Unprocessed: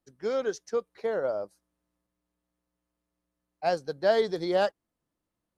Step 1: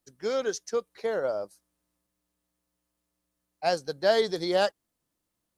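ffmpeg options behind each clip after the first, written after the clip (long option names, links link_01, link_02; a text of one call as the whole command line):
ffmpeg -i in.wav -af "highshelf=frequency=3100:gain=9.5" out.wav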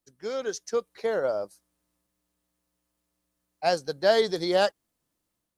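ffmpeg -i in.wav -af "dynaudnorm=framelen=380:gausssize=3:maxgain=6dB,volume=-4dB" out.wav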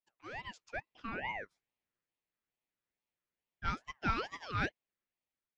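ffmpeg -i in.wav -af "highpass=720,lowpass=2400,aeval=exprs='val(0)*sin(2*PI*1100*n/s+1100*0.4/2.3*sin(2*PI*2.3*n/s))':channel_layout=same,volume=-4.5dB" out.wav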